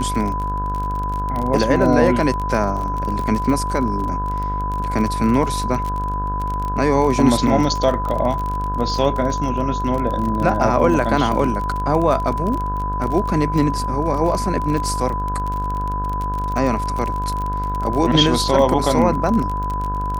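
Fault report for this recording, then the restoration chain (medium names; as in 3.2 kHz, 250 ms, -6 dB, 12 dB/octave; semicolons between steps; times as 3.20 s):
buzz 50 Hz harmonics 34 -25 dBFS
crackle 32 per s -23 dBFS
whine 1 kHz -23 dBFS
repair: de-click; de-hum 50 Hz, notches 34; band-stop 1 kHz, Q 30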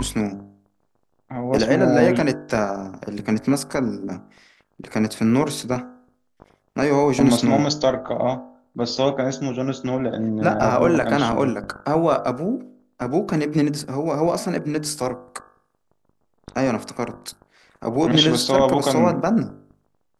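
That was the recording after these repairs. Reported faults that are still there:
nothing left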